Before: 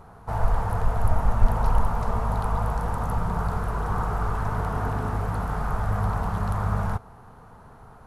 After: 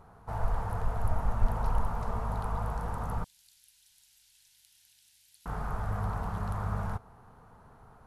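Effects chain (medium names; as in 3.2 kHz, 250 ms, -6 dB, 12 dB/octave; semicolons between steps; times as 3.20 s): 3.24–5.46 s: inverse Chebyshev high-pass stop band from 1.3 kHz, stop band 50 dB; trim -7.5 dB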